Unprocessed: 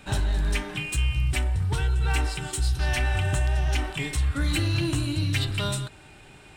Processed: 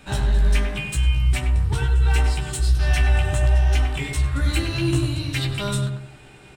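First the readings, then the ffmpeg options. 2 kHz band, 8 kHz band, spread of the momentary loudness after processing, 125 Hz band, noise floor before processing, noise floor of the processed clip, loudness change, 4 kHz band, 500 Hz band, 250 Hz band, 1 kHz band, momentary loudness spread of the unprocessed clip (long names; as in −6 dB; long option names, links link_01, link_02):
+2.0 dB, +1.5 dB, 5 LU, +5.0 dB, −49 dBFS, −46 dBFS, +4.5 dB, +1.5 dB, +4.5 dB, +3.5 dB, +2.5 dB, 4 LU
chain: -filter_complex "[0:a]asplit=2[link_01][link_02];[link_02]adelay=15,volume=-4.5dB[link_03];[link_01][link_03]amix=inputs=2:normalize=0,asplit=2[link_04][link_05];[link_05]adelay=98,lowpass=frequency=1300:poles=1,volume=-3dB,asplit=2[link_06][link_07];[link_07]adelay=98,lowpass=frequency=1300:poles=1,volume=0.37,asplit=2[link_08][link_09];[link_09]adelay=98,lowpass=frequency=1300:poles=1,volume=0.37,asplit=2[link_10][link_11];[link_11]adelay=98,lowpass=frequency=1300:poles=1,volume=0.37,asplit=2[link_12][link_13];[link_13]adelay=98,lowpass=frequency=1300:poles=1,volume=0.37[link_14];[link_06][link_08][link_10][link_12][link_14]amix=inputs=5:normalize=0[link_15];[link_04][link_15]amix=inputs=2:normalize=0"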